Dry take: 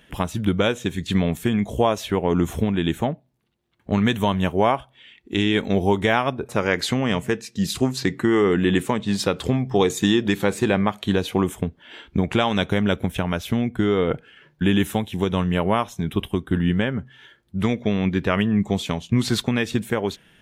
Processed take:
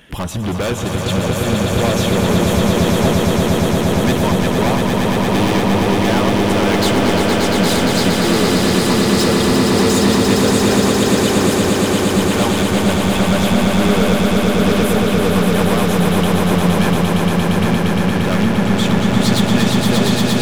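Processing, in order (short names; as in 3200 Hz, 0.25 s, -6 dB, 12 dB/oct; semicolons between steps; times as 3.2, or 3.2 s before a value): overloaded stage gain 25.5 dB; on a send: swelling echo 0.116 s, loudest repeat 8, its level -5 dB; on the sum: gain +7.5 dB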